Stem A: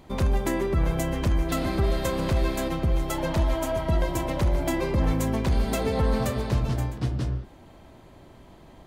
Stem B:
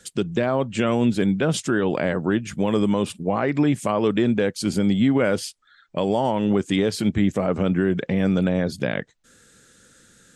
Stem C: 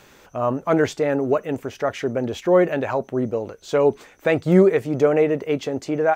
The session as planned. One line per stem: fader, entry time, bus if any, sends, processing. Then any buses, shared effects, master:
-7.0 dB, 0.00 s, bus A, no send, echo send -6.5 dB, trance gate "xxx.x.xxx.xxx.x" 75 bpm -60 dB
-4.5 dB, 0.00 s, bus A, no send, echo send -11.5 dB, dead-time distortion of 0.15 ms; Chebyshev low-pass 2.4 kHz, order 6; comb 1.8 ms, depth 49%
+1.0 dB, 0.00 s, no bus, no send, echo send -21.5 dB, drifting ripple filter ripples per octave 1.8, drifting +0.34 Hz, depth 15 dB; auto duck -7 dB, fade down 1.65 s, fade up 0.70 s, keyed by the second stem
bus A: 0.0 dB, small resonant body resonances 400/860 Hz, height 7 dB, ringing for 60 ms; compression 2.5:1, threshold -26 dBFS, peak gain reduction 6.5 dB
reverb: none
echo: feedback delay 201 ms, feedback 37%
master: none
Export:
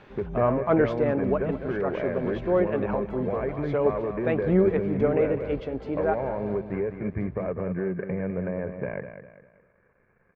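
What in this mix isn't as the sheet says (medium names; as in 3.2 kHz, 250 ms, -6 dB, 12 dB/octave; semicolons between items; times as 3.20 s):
stem A -7.0 dB -> -16.0 dB; stem C: missing drifting ripple filter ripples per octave 1.8, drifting +0.34 Hz, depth 15 dB; master: extra distance through air 360 m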